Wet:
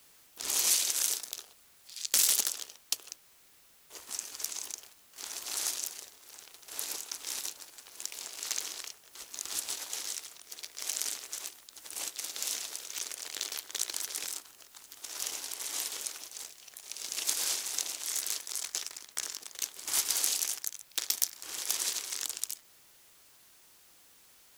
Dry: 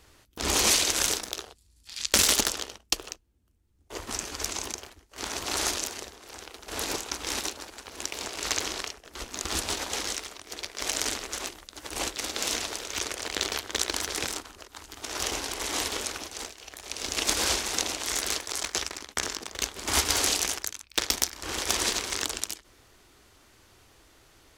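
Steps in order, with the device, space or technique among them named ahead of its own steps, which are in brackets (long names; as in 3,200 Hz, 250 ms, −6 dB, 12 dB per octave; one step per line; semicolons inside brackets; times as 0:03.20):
turntable without a phono preamp (RIAA equalisation recording; white noise bed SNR 24 dB)
level −14 dB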